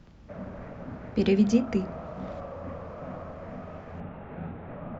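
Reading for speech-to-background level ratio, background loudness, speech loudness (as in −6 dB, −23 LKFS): 15.0 dB, −40.5 LKFS, −25.5 LKFS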